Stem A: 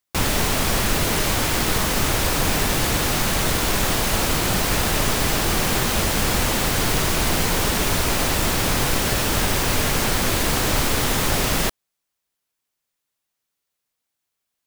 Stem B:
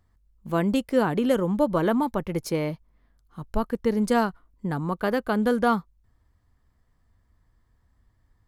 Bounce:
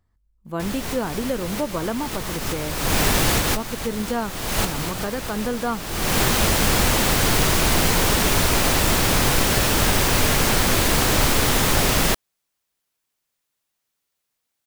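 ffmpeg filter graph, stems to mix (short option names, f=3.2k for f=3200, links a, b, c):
-filter_complex "[0:a]adelay=450,volume=2dB[a];[1:a]volume=-3.5dB,asplit=2[b][c];[c]apad=whole_len=666754[d];[a][d]sidechaincompress=threshold=-35dB:ratio=16:attack=7.6:release=390[e];[e][b]amix=inputs=2:normalize=0"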